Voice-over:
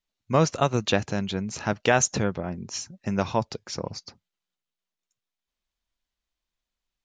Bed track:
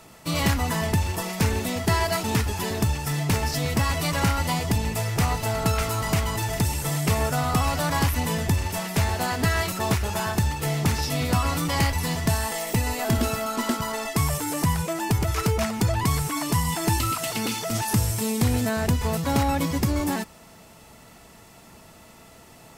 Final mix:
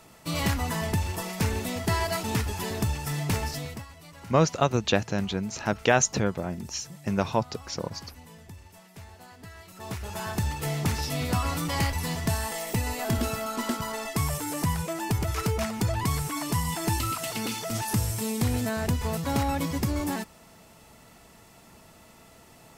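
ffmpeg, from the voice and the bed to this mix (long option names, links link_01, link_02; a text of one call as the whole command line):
ffmpeg -i stem1.wav -i stem2.wav -filter_complex "[0:a]adelay=4000,volume=-0.5dB[link_01];[1:a]volume=15dB,afade=type=out:start_time=3.38:duration=0.48:silence=0.112202,afade=type=in:start_time=9.66:duration=0.85:silence=0.112202[link_02];[link_01][link_02]amix=inputs=2:normalize=0" out.wav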